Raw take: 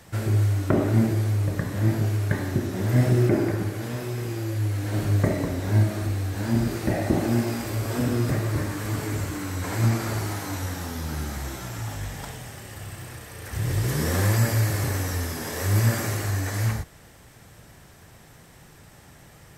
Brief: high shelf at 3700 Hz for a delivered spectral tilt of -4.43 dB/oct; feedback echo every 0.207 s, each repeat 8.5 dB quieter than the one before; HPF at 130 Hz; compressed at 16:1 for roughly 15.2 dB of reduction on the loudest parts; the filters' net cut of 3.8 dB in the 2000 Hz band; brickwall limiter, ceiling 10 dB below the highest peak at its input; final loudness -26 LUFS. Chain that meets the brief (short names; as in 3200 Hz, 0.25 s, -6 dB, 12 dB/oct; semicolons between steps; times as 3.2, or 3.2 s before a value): HPF 130 Hz; bell 2000 Hz -5.5 dB; high shelf 3700 Hz +3.5 dB; compressor 16:1, threshold -32 dBFS; limiter -30.5 dBFS; feedback echo 0.207 s, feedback 38%, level -8.5 dB; gain +12.5 dB